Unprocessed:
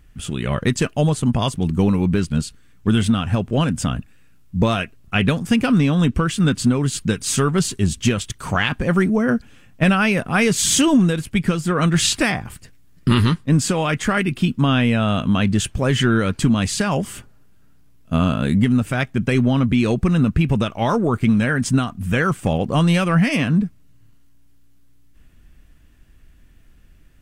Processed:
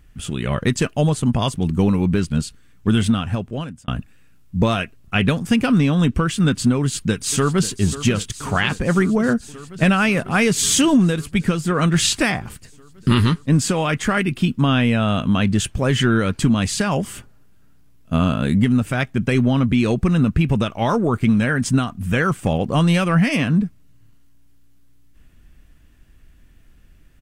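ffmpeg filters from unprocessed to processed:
ffmpeg -i in.wav -filter_complex "[0:a]asplit=2[link_01][link_02];[link_02]afade=type=in:start_time=6.78:duration=0.01,afade=type=out:start_time=7.71:duration=0.01,aecho=0:1:540|1080|1620|2160|2700|3240|3780|4320|4860|5400|5940|6480:0.211349|0.169079|0.135263|0.108211|0.0865685|0.0692548|0.0554038|0.0443231|0.0354585|0.0283668|0.0226934|0.0181547[link_03];[link_01][link_03]amix=inputs=2:normalize=0,asplit=2[link_04][link_05];[link_04]atrim=end=3.88,asetpts=PTS-STARTPTS,afade=type=out:start_time=3.1:duration=0.78[link_06];[link_05]atrim=start=3.88,asetpts=PTS-STARTPTS,afade=type=in:duration=0.004:curve=hsin[link_07];[link_06][link_07]concat=n=2:v=0:a=1" out.wav

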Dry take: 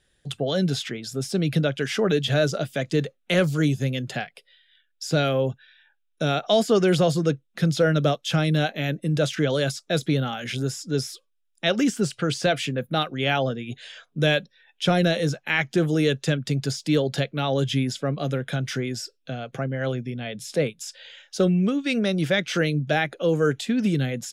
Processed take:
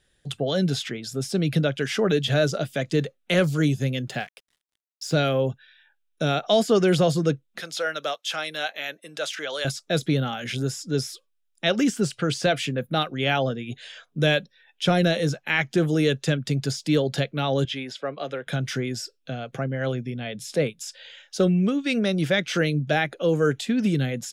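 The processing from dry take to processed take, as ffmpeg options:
ffmpeg -i in.wav -filter_complex "[0:a]asettb=1/sr,asplit=3[link_01][link_02][link_03];[link_01]atrim=end=4.084[link_04];[link_02]atrim=start=4.08:end=5.14,asetpts=PTS-STARTPTS,afade=type=in:duration=0.004:curve=qsin,afade=type=out:start_time=1.056:duration=0.004:curve=qsin,aeval=exprs='sgn(val(0))*max(abs(val(0))-0.00251,0)':channel_layout=same[link_05];[link_03]atrim=start=5.136[link_06];[link_04][link_05]acrossfade=duration=0.004:curve1=hsin:curve2=qsin[link_07];[link_07][link_06]acrossfade=duration=0.004:curve1=qsin:curve2=hsin,asettb=1/sr,asplit=3[link_08][link_09][link_10];[link_08]atrim=end=7.604[link_11];[link_09]atrim=start=7.6:end=9.65,asetpts=PTS-STARTPTS,afade=type=in:duration=0.004:curve=qsin,afade=type=out:start_time=2.046:duration=0.004:curve=qsin,highpass=790[link_12];[link_10]atrim=start=9.646[link_13];[link_11][link_12]acrossfade=duration=0.004:curve1=hsin:curve2=qsin[link_14];[link_14][link_13]acrossfade=duration=0.004:curve1=qsin:curve2=hsin,asettb=1/sr,asplit=3[link_15][link_16][link_17];[link_15]atrim=end=17.654[link_18];[link_16]atrim=start=17.65:end=18.47,asetpts=PTS-STARTPTS,afade=type=in:duration=0.004:curve=qsin,afade=type=out:start_time=0.816:duration=0.004:curve=qsin,acrossover=split=360 4800:gain=0.126 1 0.2[link_19][link_20][link_21];[link_19][link_20][link_21]amix=inputs=3:normalize=0[link_22];[link_17]atrim=start=18.466[link_23];[link_18][link_22]acrossfade=duration=0.004:curve1=hsin:curve2=qsin[link_24];[link_24][link_23]acrossfade=duration=0.004:curve1=qsin:curve2=hsin" out.wav

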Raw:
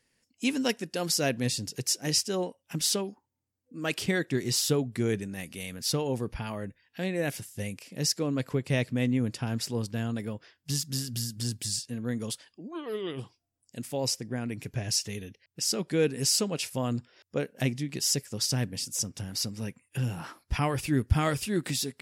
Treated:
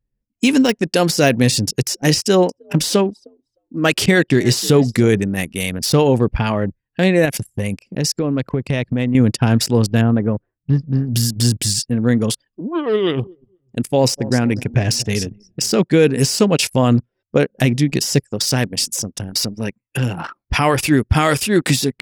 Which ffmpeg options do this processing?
ffmpeg -i in.wav -filter_complex "[0:a]asettb=1/sr,asplit=3[link_01][link_02][link_03];[link_01]atrim=end=2.184[link_04];[link_02]atrim=start=2.18:end=5.09,asetpts=PTS-STARTPTS,afade=type=in:duration=0.004:curve=qsin,afade=type=out:start_time=2.906:duration=0.004:curve=qsin,asplit=4[link_05][link_06][link_07][link_08];[link_06]adelay=308,afreqshift=58,volume=-21dB[link_09];[link_07]adelay=616,afreqshift=116,volume=-30.1dB[link_10];[link_08]adelay=924,afreqshift=174,volume=-39.2dB[link_11];[link_05][link_09][link_10][link_11]amix=inputs=4:normalize=0,atrim=end_sample=128331[link_12];[link_03]atrim=start=5.086[link_13];[link_04][link_12]acrossfade=duration=0.004:curve1=hsin:curve2=qsin[link_14];[link_14][link_13]acrossfade=duration=0.004:curve1=qsin:curve2=hsin,asettb=1/sr,asplit=3[link_15][link_16][link_17];[link_15]atrim=end=7.254[link_18];[link_16]atrim=start=7.25:end=9.15,asetpts=PTS-STARTPTS,afade=type=in:duration=0.004:curve=qsin,afade=type=out:start_time=1.896:duration=0.004:curve=qsin,acompressor=threshold=-32dB:ratio=6:attack=3.2:release=140:knee=1:detection=peak[link_19];[link_17]atrim=start=9.146[link_20];[link_18][link_19]acrossfade=duration=0.004:curve1=hsin:curve2=qsin[link_21];[link_21][link_20]acrossfade=duration=0.004:curve1=qsin:curve2=hsin,asettb=1/sr,asplit=3[link_22][link_23][link_24];[link_22]atrim=end=10.014[link_25];[link_23]atrim=start=10.01:end=11.13,asetpts=PTS-STARTPTS,afade=type=in:duration=0.004:curve=qsin,afade=type=out:start_time=1.116:duration=0.004:curve=qsin,lowpass=1500[link_26];[link_24]atrim=start=11.126[link_27];[link_25][link_26]acrossfade=duration=0.004:curve1=hsin:curve2=qsin[link_28];[link_28][link_27]acrossfade=duration=0.004:curve1=qsin:curve2=hsin,asettb=1/sr,asplit=3[link_29][link_30][link_31];[link_29]atrim=end=12.994[link_32];[link_30]atrim=start=12.99:end=15.82,asetpts=PTS-STARTPTS,afade=type=in:duration=0.004:curve=qsin,afade=type=out:start_time=2.826:duration=0.004:curve=qsin,aecho=1:1:243|486|729|972:0.158|0.0666|0.028|0.0117,atrim=end_sample=124803[link_33];[link_31]atrim=start=15.816[link_34];[link_32][link_33]acrossfade=duration=0.004:curve1=hsin:curve2=qsin[link_35];[link_35][link_34]acrossfade=duration=0.004:curve1=qsin:curve2=hsin,asettb=1/sr,asplit=3[link_36][link_37][link_38];[link_36]atrim=end=18.274[link_39];[link_37]atrim=start=18.27:end=21.68,asetpts=PTS-STARTPTS,afade=type=in:duration=0.004:curve=qsin,afade=type=out:start_time=3.406:duration=0.004:curve=qsin,lowshelf=frequency=210:gain=-10[link_40];[link_38]atrim=start=21.676[link_41];[link_39][link_40]acrossfade=duration=0.004:curve1=hsin:curve2=qsin[link_42];[link_42][link_41]acrossfade=duration=0.004:curve1=qsin:curve2=hsin,deesser=0.65,anlmdn=0.398,alimiter=level_in=20dB:limit=-1dB:release=50:level=0:latency=1,volume=-3dB" out.wav

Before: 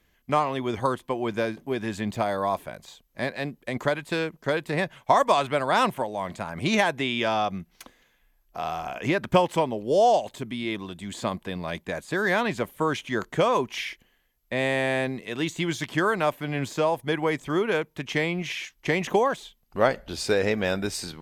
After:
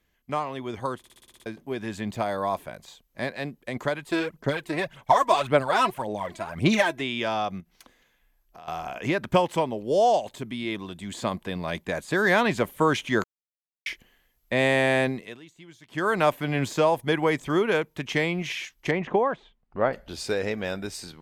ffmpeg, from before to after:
ffmpeg -i in.wav -filter_complex "[0:a]asplit=3[link_01][link_02][link_03];[link_01]afade=type=out:start_time=4.04:duration=0.02[link_04];[link_02]aphaser=in_gain=1:out_gain=1:delay=3.1:decay=0.63:speed=1.8:type=sinusoidal,afade=type=in:start_time=4.04:duration=0.02,afade=type=out:start_time=7:duration=0.02[link_05];[link_03]afade=type=in:start_time=7:duration=0.02[link_06];[link_04][link_05][link_06]amix=inputs=3:normalize=0,asettb=1/sr,asplit=3[link_07][link_08][link_09];[link_07]atrim=end=7.604[link_10];[link_08]atrim=start=7.6:end=8.68,asetpts=PTS-STARTPTS,afade=type=in:duration=0.004:curve=qsin,afade=type=out:start_time=1.076:duration=0.004:curve=qsin,acompressor=threshold=-45dB:ratio=3:attack=3.2:release=140:knee=1:detection=peak[link_11];[link_09]atrim=start=8.676[link_12];[link_10][link_11]acrossfade=duration=0.004:curve1=hsin:curve2=qsin[link_13];[link_13][link_12]acrossfade=duration=0.004:curve1=qsin:curve2=hsin,asettb=1/sr,asplit=3[link_14][link_15][link_16];[link_14]atrim=end=18.914[link_17];[link_15]atrim=start=18.91:end=19.93,asetpts=PTS-STARTPTS,afade=type=in:duration=0.004:curve=qsin,afade=type=out:start_time=1.016:duration=0.004:curve=qsin,lowpass=1900[link_18];[link_16]atrim=start=19.926[link_19];[link_17][link_18]acrossfade=duration=0.004:curve1=hsin:curve2=qsin[link_20];[link_20][link_19]acrossfade=duration=0.004:curve1=qsin:curve2=hsin,asplit=13[link_21][link_22][link_23][link_24][link_25][link_26][link_27][link_28][link_29][link_30][link_31][link_32][link_33];[link_21]atrim=end=1.042[link_34];[link_22]atrim=start=0.978:end=1.042[link_35];[link_23]atrim=start=0.978:end=1.042[link_36];[link_24]atrim=start=0.978:end=1.042[link_37];[link_25]atrim=start=0.978:end=1.042[link_38];[link_26]atrim=start=0.978:end=1.042[link_39];[link_27]atrim=start=0.978:end=1.042[link_40];[link_28]atrim=start=0.978:end=1.042[link_41];[link_29]atrim=start=1.458:end=13.24,asetpts=PTS-STARTPTS,afade=type=out:start_time=11.778:duration=0.004:curve=hsin[link_42];[link_30]atrim=start=13.24:end=13.86,asetpts=PTS-STARTPTS,volume=0[link_43];[link_31]atrim=start=13.86:end=15.4,asetpts=PTS-STARTPTS,afade=type=in:duration=0.004:curve=hsin,afade=type=out:start_time=1.21:duration=0.33:silence=0.0630957[link_44];[link_32]atrim=start=15.4:end=15.87,asetpts=PTS-STARTPTS,volume=-24dB[link_45];[link_33]atrim=start=15.87,asetpts=PTS-STARTPTS,afade=type=in:duration=0.33:silence=0.0630957[link_46];[link_34][link_35]acrossfade=duration=0.004:curve1=hsin:curve2=hsin[link_47];[link_47][link_36]acrossfade=duration=0.004:curve1=hsin:curve2=hsin[link_48];[link_48][link_37]acrossfade=duration=0.004:curve1=hsin:curve2=hsin[link_49];[link_49][link_38]acrossfade=duration=0.004:curve1=hsin:curve2=hsin[link_50];[link_50][link_39]acrossfade=duration=0.004:curve1=hsin:curve2=hsin[link_51];[link_51][link_40]acrossfade=duration=0.004:curve1=hsin:curve2=hsin[link_52];[link_52][link_41]acrossfade=duration=0.004:curve1=hsin:curve2=hsin[link_53];[link_42][link_43][link_44][link_45][link_46]concat=n=5:v=0:a=1[link_54];[link_53][link_54]acrossfade=duration=0.004:curve1=hsin:curve2=hsin,dynaudnorm=framelen=400:gausssize=11:maxgain=11.5dB,volume=-5.5dB" out.wav

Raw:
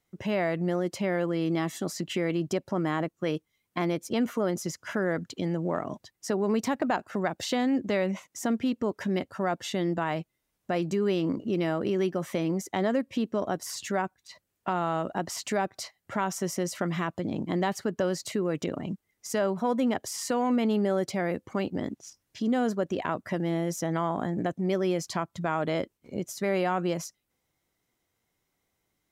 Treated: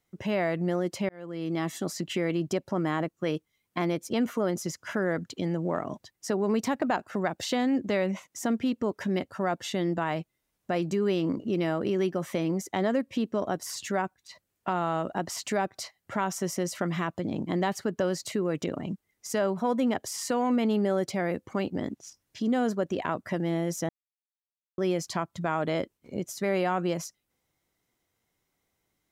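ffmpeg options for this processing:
ffmpeg -i in.wav -filter_complex "[0:a]asplit=4[link_01][link_02][link_03][link_04];[link_01]atrim=end=1.09,asetpts=PTS-STARTPTS,afade=type=out:start_time=1.086:duration=0.004:curve=hsin[link_05];[link_02]atrim=start=1.09:end=23.89,asetpts=PTS-STARTPTS,afade=type=in:duration=0.6,afade=type=out:start_time=22.796:duration=0.004:curve=hsin[link_06];[link_03]atrim=start=23.89:end=24.78,asetpts=PTS-STARTPTS,volume=0[link_07];[link_04]atrim=start=24.78,asetpts=PTS-STARTPTS,afade=type=in:duration=0.004:curve=hsin[link_08];[link_05][link_06][link_07][link_08]concat=n=4:v=0:a=1" out.wav

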